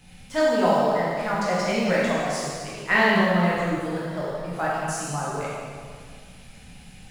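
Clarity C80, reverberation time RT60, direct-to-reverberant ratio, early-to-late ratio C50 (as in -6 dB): -0.5 dB, 2.0 s, -8.5 dB, -3.0 dB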